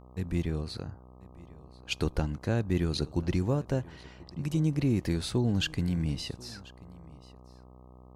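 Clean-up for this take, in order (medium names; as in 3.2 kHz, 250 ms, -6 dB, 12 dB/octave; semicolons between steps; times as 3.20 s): de-hum 62.6 Hz, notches 20; inverse comb 1038 ms -21.5 dB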